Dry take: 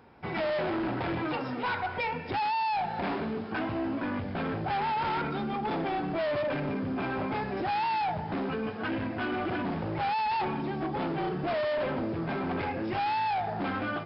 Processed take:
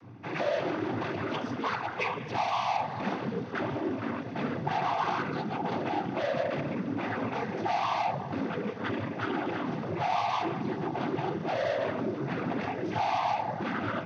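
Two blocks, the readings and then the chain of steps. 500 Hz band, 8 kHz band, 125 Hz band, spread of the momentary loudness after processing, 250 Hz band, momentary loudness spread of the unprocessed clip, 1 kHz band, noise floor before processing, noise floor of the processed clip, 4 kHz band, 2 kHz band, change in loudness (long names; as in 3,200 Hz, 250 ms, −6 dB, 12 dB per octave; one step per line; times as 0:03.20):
0.0 dB, can't be measured, 0.0 dB, 5 LU, −1.0 dB, 4 LU, −1.0 dB, −36 dBFS, −38 dBFS, 0.0 dB, −1.0 dB, −0.5 dB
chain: mains hum 60 Hz, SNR 13 dB
cochlear-implant simulation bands 16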